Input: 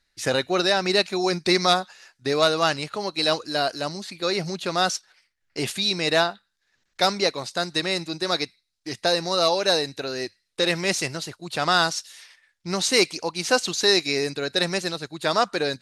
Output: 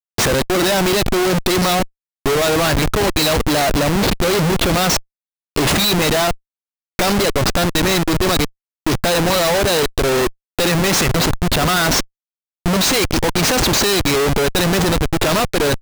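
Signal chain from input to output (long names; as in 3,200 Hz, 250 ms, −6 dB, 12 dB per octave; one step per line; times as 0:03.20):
in parallel at −1 dB: downward compressor 10 to 1, threshold −29 dBFS, peak gain reduction 15.5 dB
on the sum: comparator with hysteresis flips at −28.5 dBFS
level +7.5 dB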